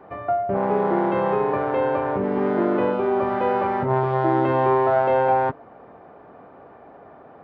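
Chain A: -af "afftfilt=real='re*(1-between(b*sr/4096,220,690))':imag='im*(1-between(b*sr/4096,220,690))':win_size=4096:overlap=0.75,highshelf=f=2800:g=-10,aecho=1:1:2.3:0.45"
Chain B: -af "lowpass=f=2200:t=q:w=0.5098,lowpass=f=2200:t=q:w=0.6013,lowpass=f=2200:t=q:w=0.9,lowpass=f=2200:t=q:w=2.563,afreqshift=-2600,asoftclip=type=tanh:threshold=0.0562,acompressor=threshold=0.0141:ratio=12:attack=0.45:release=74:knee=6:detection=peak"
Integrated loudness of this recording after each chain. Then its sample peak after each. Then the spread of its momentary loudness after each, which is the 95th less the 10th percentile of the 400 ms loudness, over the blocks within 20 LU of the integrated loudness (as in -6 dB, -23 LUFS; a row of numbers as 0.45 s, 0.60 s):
-25.5 LUFS, -37.0 LUFS; -11.5 dBFS, -34.5 dBFS; 8 LU, 9 LU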